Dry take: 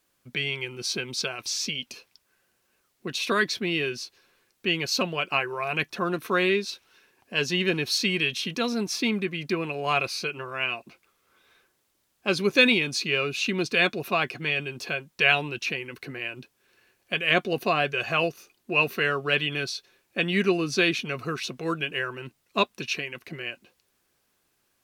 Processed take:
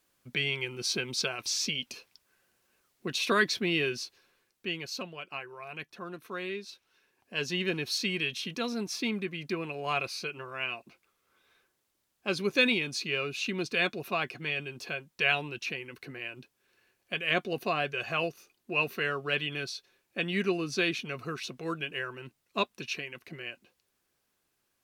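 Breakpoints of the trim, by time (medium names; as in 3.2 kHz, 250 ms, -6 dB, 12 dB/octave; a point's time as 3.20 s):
4.01 s -1.5 dB
5.16 s -14 dB
6.42 s -14 dB
7.50 s -6 dB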